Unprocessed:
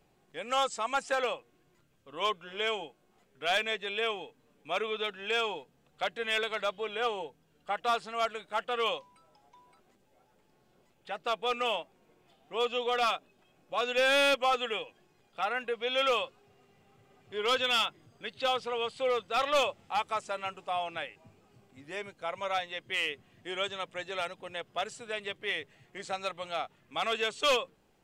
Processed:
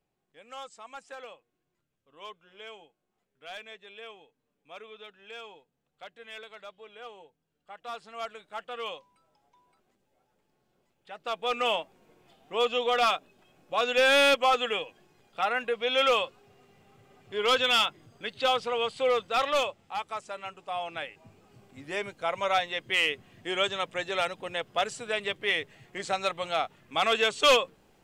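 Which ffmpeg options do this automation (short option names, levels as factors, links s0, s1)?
-af "volume=4.47,afade=t=in:st=7.72:d=0.5:silence=0.421697,afade=t=in:st=11.12:d=0.57:silence=0.316228,afade=t=out:st=19.24:d=0.54:silence=0.446684,afade=t=in:st=20.56:d=1.29:silence=0.354813"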